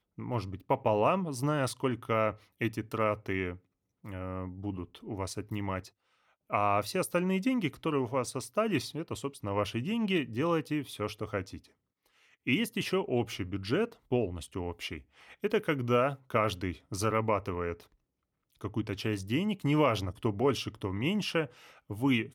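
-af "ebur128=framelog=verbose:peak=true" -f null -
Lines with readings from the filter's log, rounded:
Integrated loudness:
  I:         -32.1 LUFS
  Threshold: -42.4 LUFS
Loudness range:
  LRA:         4.0 LU
  Threshold: -52.8 LUFS
  LRA low:   -35.2 LUFS
  LRA high:  -31.1 LUFS
True peak:
  Peak:      -11.8 dBFS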